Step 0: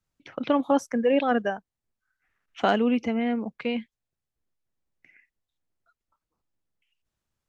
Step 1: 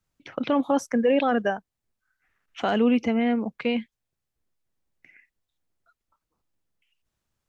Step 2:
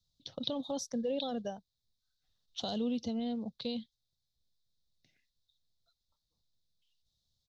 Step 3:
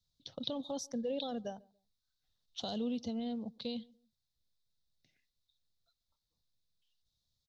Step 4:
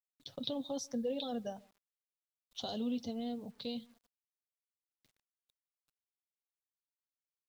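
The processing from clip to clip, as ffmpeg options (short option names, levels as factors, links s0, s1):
-af "alimiter=limit=0.168:level=0:latency=1:release=12,volume=1.41"
-filter_complex "[0:a]asplit=2[s0][s1];[s1]acompressor=threshold=0.0398:ratio=6,volume=1.26[s2];[s0][s2]amix=inputs=2:normalize=0,firequalizer=gain_entry='entry(120,0);entry(340,-13);entry(520,-7);entry(1400,-21);entry(2300,-24);entry(3700,13);entry(8200,-6)':delay=0.05:min_phase=1,volume=0.376"
-filter_complex "[0:a]asplit=2[s0][s1];[s1]adelay=142,lowpass=f=870:p=1,volume=0.0668,asplit=2[s2][s3];[s3]adelay=142,lowpass=f=870:p=1,volume=0.29[s4];[s0][s2][s4]amix=inputs=3:normalize=0,volume=0.75"
-af "flanger=delay=6.7:depth=2.2:regen=-40:speed=0.29:shape=triangular,acrusher=bits=11:mix=0:aa=0.000001,volume=1.5"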